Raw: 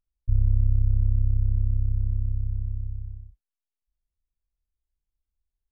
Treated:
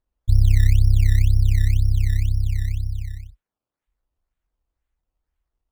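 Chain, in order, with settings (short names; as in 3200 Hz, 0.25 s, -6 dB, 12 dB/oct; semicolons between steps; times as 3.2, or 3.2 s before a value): notch comb 200 Hz; decimation with a swept rate 16×, swing 100% 2 Hz; gain +6.5 dB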